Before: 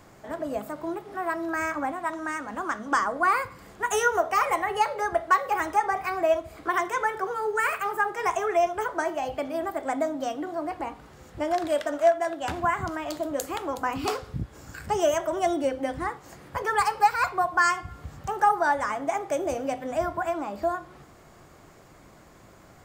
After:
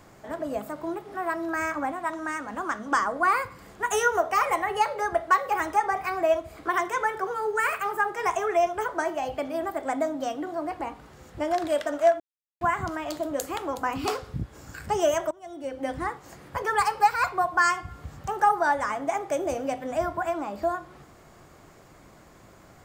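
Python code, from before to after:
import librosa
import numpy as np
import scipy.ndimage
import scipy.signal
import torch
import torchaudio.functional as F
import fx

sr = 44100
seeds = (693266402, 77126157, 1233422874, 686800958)

y = fx.edit(x, sr, fx.silence(start_s=12.2, length_s=0.41),
    fx.fade_in_from(start_s=15.31, length_s=0.59, curve='qua', floor_db=-23.0), tone=tone)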